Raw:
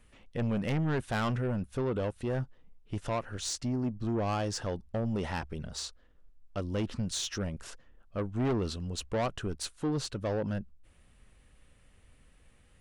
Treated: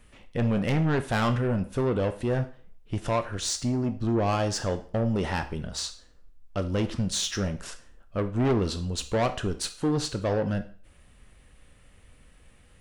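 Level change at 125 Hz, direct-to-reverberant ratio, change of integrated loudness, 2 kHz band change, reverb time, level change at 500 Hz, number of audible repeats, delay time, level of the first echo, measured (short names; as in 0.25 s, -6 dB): +5.5 dB, 8.5 dB, +5.5 dB, +6.0 dB, 0.45 s, +6.0 dB, none, none, none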